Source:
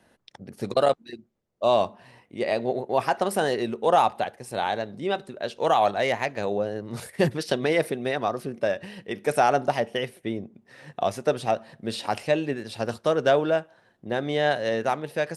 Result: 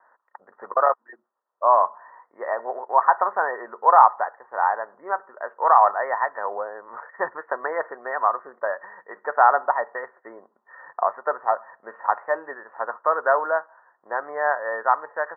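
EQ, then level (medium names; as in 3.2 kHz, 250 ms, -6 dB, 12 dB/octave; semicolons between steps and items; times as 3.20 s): resonant high-pass 1 kHz, resonance Q 6.2; rippled Chebyshev low-pass 1.9 kHz, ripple 6 dB; distance through air 180 m; +5.5 dB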